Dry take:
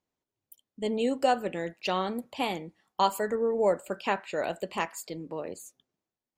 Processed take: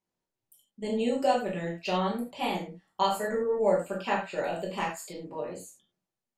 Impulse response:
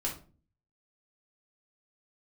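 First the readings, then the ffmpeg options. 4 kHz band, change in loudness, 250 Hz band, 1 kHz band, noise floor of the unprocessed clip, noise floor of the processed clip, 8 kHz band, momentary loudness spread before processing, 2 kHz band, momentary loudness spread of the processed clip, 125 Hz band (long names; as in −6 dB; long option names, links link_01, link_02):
−0.5 dB, 0.0 dB, +1.0 dB, −0.5 dB, below −85 dBFS, below −85 dBFS, −1.0 dB, 12 LU, −0.5 dB, 13 LU, +4.0 dB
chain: -filter_complex "[1:a]atrim=start_sample=2205,atrim=end_sample=3087,asetrate=26901,aresample=44100[link_01];[0:a][link_01]afir=irnorm=-1:irlink=0,volume=-7dB"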